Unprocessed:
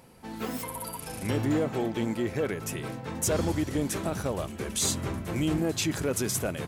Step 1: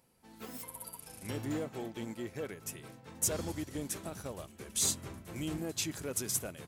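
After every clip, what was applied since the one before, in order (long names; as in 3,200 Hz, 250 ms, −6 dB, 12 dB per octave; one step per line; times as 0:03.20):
high-shelf EQ 4,200 Hz +8 dB
expander for the loud parts 1.5 to 1, over −39 dBFS
level −7.5 dB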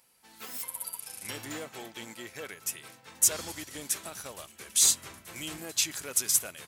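tilt shelving filter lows −9 dB, about 720 Hz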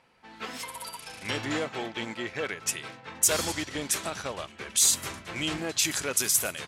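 low-pass that shuts in the quiet parts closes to 2,400 Hz, open at −25.5 dBFS
in parallel at +1 dB: compressor whose output falls as the input rises −32 dBFS, ratio −0.5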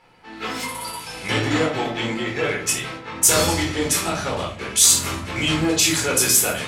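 rectangular room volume 460 cubic metres, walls furnished, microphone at 4.1 metres
level +3 dB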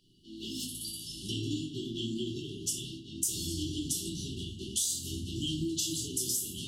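downward compressor 10 to 1, threshold −23 dBFS, peak gain reduction 13.5 dB
linear-phase brick-wall band-stop 410–2,700 Hz
level −5.5 dB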